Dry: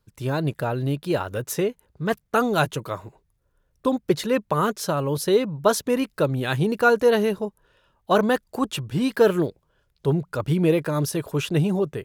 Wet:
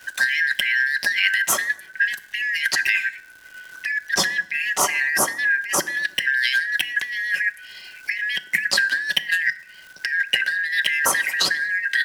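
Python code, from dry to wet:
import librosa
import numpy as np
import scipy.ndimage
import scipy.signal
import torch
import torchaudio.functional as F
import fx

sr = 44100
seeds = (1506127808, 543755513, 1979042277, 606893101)

p1 = fx.band_shuffle(x, sr, order='4123')
p2 = fx.highpass(p1, sr, hz=140.0, slope=6)
p3 = fx.high_shelf(p2, sr, hz=9900.0, db=-6.5)
p4 = p3 + 0.42 * np.pad(p3, (int(5.3 * sr / 1000.0), 0))[:len(p3)]
p5 = fx.over_compress(p4, sr, threshold_db=-31.0, ratio=-1.0)
p6 = fx.dmg_crackle(p5, sr, seeds[0], per_s=350.0, level_db=-51.0)
p7 = p6 + fx.echo_filtered(p6, sr, ms=114, feedback_pct=59, hz=1000.0, wet_db=-23.5, dry=0)
p8 = fx.rev_fdn(p7, sr, rt60_s=0.6, lf_ratio=1.4, hf_ratio=0.85, size_ms=20.0, drr_db=14.0)
p9 = fx.band_squash(p8, sr, depth_pct=40)
y = p9 * 10.0 ** (7.5 / 20.0)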